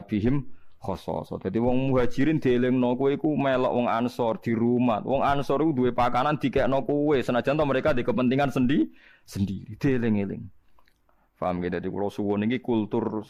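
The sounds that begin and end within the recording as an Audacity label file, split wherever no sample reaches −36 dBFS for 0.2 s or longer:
0.840000	8.880000	sound
9.300000	10.460000	sound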